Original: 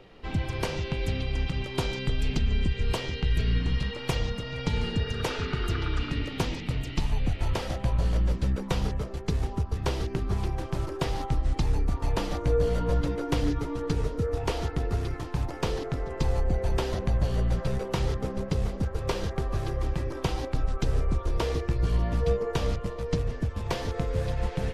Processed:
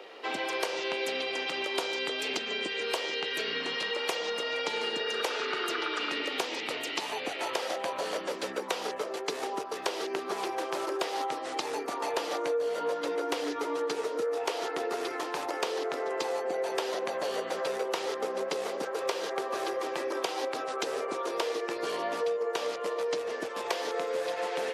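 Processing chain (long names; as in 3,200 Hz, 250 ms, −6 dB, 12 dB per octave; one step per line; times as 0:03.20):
high-pass filter 390 Hz 24 dB per octave
downward compressor 6 to 1, threshold −36 dBFS, peak gain reduction 11 dB
level +8 dB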